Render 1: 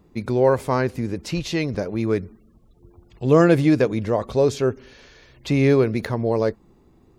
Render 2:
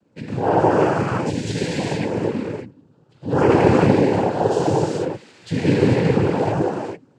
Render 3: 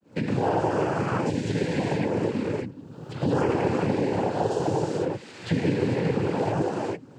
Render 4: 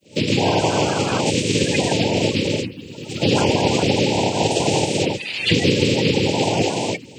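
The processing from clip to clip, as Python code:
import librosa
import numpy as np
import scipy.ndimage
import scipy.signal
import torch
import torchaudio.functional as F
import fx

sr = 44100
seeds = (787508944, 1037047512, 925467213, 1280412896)

y1 = fx.rev_gated(x, sr, seeds[0], gate_ms=480, shape='flat', drr_db=-8.0)
y1 = fx.noise_vocoder(y1, sr, seeds[1], bands=8)
y1 = F.gain(torch.from_numpy(y1), -6.5).numpy()
y2 = fx.fade_in_head(y1, sr, length_s=0.53)
y2 = fx.band_squash(y2, sr, depth_pct=100)
y2 = F.gain(torch.from_numpy(y2), -7.5).numpy()
y3 = fx.spec_quant(y2, sr, step_db=30)
y3 = fx.high_shelf_res(y3, sr, hz=1900.0, db=10.0, q=3.0)
y3 = F.gain(torch.from_numpy(y3), 7.0).numpy()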